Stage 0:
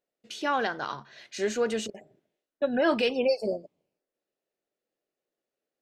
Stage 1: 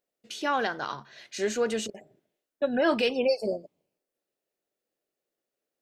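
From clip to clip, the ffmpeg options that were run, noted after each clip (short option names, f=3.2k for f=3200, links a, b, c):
-af "highshelf=f=7.5k:g=5"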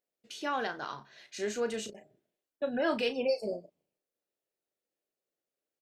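-filter_complex "[0:a]asplit=2[a][b];[b]adelay=34,volume=-10dB[c];[a][c]amix=inputs=2:normalize=0,volume=-6dB"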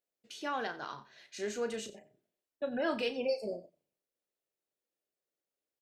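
-af "aecho=1:1:89:0.126,volume=-3dB"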